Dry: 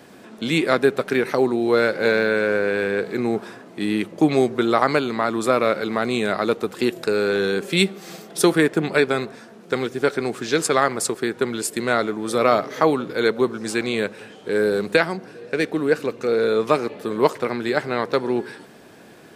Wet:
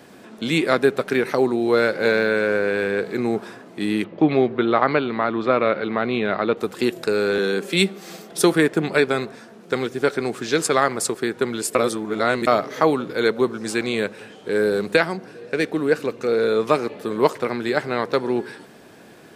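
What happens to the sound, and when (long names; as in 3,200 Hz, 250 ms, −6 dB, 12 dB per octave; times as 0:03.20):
0:04.04–0:06.57: low-pass filter 3,600 Hz 24 dB per octave
0:07.38–0:08.32: Butterworth high-pass 160 Hz
0:11.75–0:12.47: reverse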